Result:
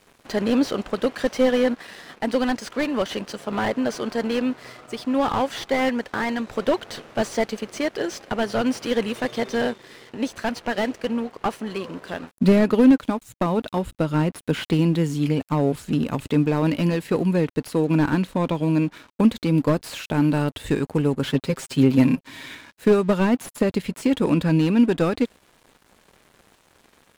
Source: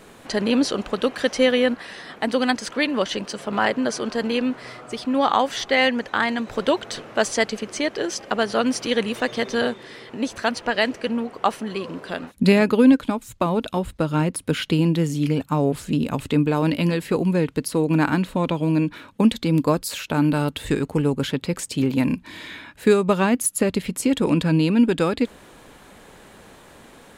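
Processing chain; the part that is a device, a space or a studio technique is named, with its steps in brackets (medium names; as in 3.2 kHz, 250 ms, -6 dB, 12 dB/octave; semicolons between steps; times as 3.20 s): early transistor amplifier (crossover distortion -45 dBFS; slew-rate limiter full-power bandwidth 110 Hz); 21.26–22.55 s: comb 7.5 ms, depth 81%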